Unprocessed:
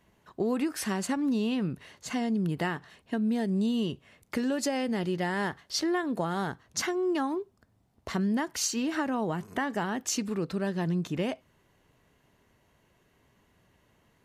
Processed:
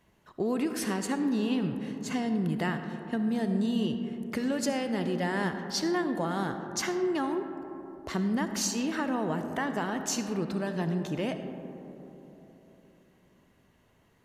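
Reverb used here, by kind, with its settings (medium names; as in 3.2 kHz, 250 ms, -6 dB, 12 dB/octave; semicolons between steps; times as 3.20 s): algorithmic reverb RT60 3.7 s, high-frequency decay 0.25×, pre-delay 25 ms, DRR 7 dB; trim -1 dB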